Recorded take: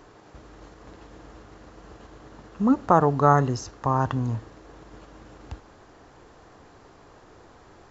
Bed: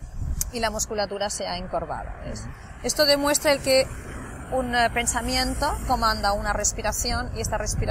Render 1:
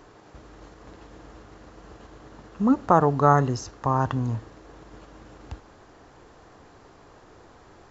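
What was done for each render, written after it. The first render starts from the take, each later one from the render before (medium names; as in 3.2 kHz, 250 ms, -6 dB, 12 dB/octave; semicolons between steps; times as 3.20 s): no audible change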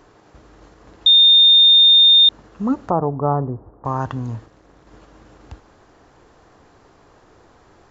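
1.06–2.29 s: bleep 3.64 kHz -7 dBFS; 2.90–3.85 s: low-pass 1 kHz 24 dB/octave; 4.46–4.87 s: AM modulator 230 Hz, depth 85%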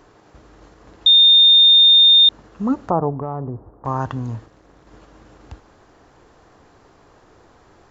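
3.11–3.87 s: compression 4:1, threshold -23 dBFS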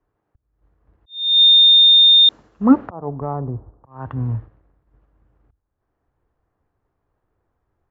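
slow attack 355 ms; three bands expanded up and down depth 100%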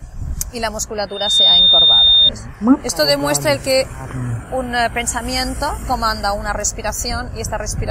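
add bed +4 dB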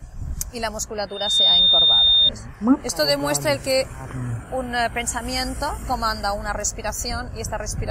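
trim -5 dB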